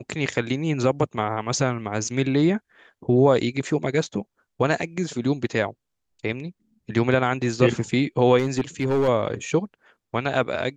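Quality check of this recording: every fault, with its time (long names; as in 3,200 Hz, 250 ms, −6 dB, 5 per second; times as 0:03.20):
0:08.38–0:09.09: clipping −16.5 dBFS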